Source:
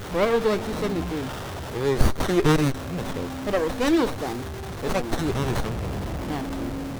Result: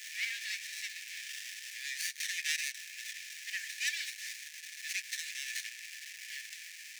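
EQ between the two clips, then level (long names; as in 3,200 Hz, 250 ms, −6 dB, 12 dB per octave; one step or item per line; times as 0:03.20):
Chebyshev high-pass with heavy ripple 1,700 Hz, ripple 6 dB
+1.5 dB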